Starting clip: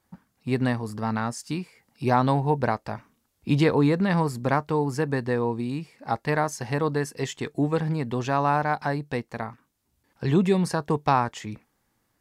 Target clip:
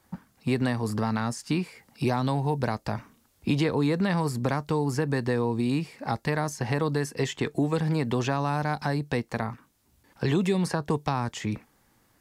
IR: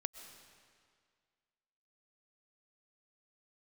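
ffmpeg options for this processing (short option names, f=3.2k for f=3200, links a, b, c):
-filter_complex "[0:a]acrossover=split=290|3400[a][b][c];[a]acompressor=threshold=-34dB:ratio=4[d];[b]acompressor=threshold=-34dB:ratio=4[e];[c]acompressor=threshold=-47dB:ratio=4[f];[d][e][f]amix=inputs=3:normalize=0,asplit=2[g][h];[h]alimiter=level_in=1.5dB:limit=-24dB:level=0:latency=1,volume=-1.5dB,volume=-2.5dB[i];[g][i]amix=inputs=2:normalize=0,volume=2.5dB"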